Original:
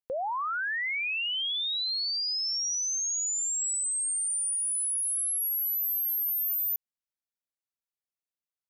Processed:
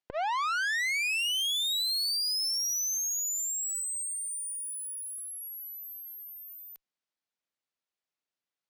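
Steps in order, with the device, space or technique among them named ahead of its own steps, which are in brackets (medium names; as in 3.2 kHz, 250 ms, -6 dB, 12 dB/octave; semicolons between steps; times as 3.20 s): valve radio (band-pass 150–5400 Hz; valve stage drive 37 dB, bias 0.7; transformer saturation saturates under 250 Hz); trim +9 dB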